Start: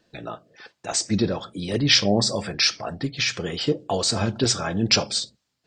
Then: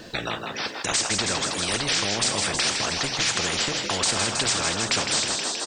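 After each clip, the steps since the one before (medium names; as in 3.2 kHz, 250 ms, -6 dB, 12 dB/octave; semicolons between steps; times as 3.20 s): peak limiter -14.5 dBFS, peak gain reduction 10 dB; frequency-shifting echo 160 ms, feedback 55%, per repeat +49 Hz, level -13.5 dB; spectrum-flattening compressor 4:1; trim +3.5 dB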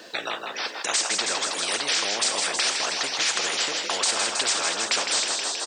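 high-pass 420 Hz 12 dB/octave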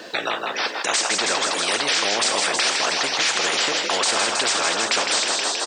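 treble shelf 4.1 kHz -6 dB; in parallel at +3 dB: peak limiter -19.5 dBFS, peak gain reduction 7.5 dB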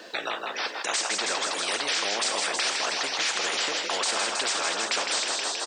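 high-pass 220 Hz 6 dB/octave; trim -6 dB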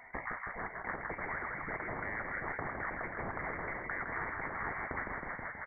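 frequency inversion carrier 2.5 kHz; trim -8 dB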